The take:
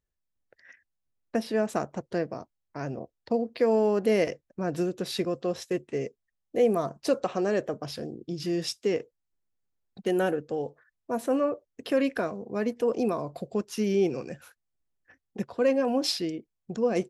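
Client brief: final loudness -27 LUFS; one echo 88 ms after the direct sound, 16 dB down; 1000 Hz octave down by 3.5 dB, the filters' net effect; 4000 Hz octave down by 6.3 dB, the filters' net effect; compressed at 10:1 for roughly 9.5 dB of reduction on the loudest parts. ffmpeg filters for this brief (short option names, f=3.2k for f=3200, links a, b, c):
-af "equalizer=f=1k:t=o:g=-5,equalizer=f=4k:t=o:g=-8.5,acompressor=threshold=-29dB:ratio=10,aecho=1:1:88:0.158,volume=9dB"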